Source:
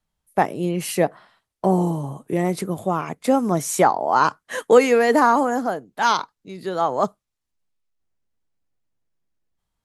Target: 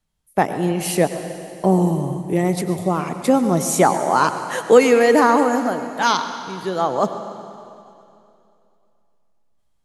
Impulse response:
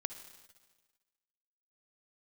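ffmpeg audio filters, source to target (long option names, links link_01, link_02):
-filter_complex "[0:a]equalizer=frequency=1000:width_type=o:width=2:gain=-3.5,asplit=2[link_01][link_02];[1:a]atrim=start_sample=2205,asetrate=23373,aresample=44100[link_03];[link_02][link_03]afir=irnorm=-1:irlink=0,volume=6.5dB[link_04];[link_01][link_04]amix=inputs=2:normalize=0,volume=-7.5dB"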